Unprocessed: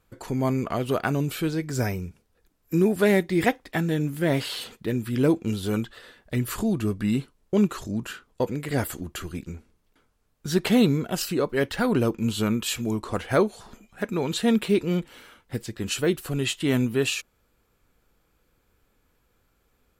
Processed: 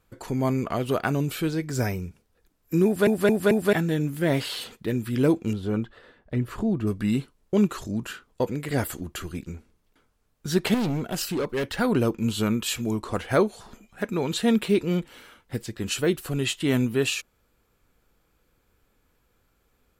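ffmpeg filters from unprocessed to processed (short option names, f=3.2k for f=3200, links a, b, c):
-filter_complex "[0:a]asettb=1/sr,asplit=3[a][b][c];[a]atrim=end=5.534[d];[b]atrim=start=5.53:end=6.87,asetpts=PTS-STARTPTS,afade=t=in:d=0.004:c=qsin,afade=t=out:st=1.336:d=0.004:c=qsin,lowpass=f=1.2k:p=1[e];[c]atrim=start=6.866[f];[d][e]acrossfade=d=0.004:c1=hsin:c2=qsin[g];[g][f]acrossfade=d=0.004:c1=qsin:c2=hsin,asettb=1/sr,asplit=3[h][i][j];[h]atrim=end=10.744[k];[i]atrim=start=10.74:end=11.7,asetpts=PTS-STARTPTS,afade=t=in:d=0.004:c=qsin,afade=t=out:st=0.956:d=0.004:c=qsin,asoftclip=type=hard:threshold=-23dB[l];[j]atrim=start=11.696[m];[k][l]acrossfade=d=0.004:c1=hsin:c2=qsin[n];[n][m]acrossfade=d=0.004:c1=qsin:c2=hsin,asplit=5[o][p][q][r][s];[o]atrim=end=3.072[t];[p]atrim=start=2.848:end=3.072[u];[q]atrim=start=2.848:end=3.072[v];[r]atrim=start=2.848:end=3.072[w];[s]atrim=start=3.728[x];[t][u]acrossfade=d=0.004:c1=hsin:c2=hsin[y];[y][v]acrossfade=d=0.004:c1=hsin:c2=hsin[z];[z][w]acrossfade=d=0.004:c1=hsin:c2=hsin[aa];[aa][x]acrossfade=d=0.004:c1=hsin:c2=hsin"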